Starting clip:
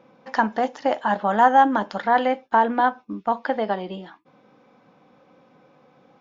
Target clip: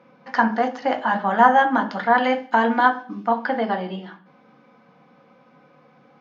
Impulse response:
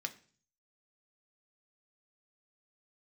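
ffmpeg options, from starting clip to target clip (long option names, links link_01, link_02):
-filter_complex "[0:a]asetnsamples=nb_out_samples=441:pad=0,asendcmd='2.24 highshelf g 7.5;3.27 highshelf g -5.5',highshelf=frequency=4300:gain=-6.5[link_01];[1:a]atrim=start_sample=2205,asetrate=37485,aresample=44100[link_02];[link_01][link_02]afir=irnorm=-1:irlink=0,volume=2.5dB"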